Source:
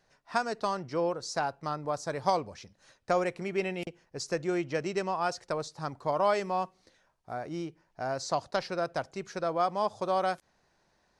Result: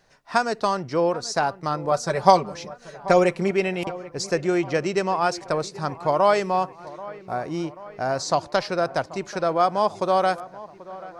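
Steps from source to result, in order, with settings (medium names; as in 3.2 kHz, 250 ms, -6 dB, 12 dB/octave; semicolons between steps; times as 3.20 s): 1.91–3.51 s: comb 5.2 ms, depth 78%; feedback echo behind a low-pass 785 ms, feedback 59%, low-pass 2.4 kHz, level -18 dB; trim +8 dB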